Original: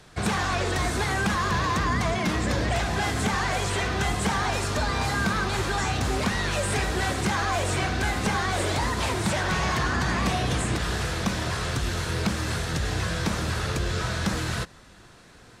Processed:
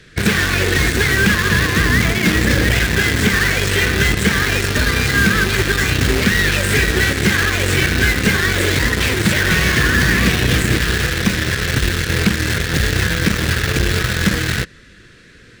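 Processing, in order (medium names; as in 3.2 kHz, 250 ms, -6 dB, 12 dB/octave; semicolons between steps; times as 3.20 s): FFT filter 480 Hz 0 dB, 820 Hz -21 dB, 1.7 kHz +5 dB, 11 kHz -7 dB; in parallel at -4.5 dB: bit crusher 4-bit; on the sum: trim +6.5 dB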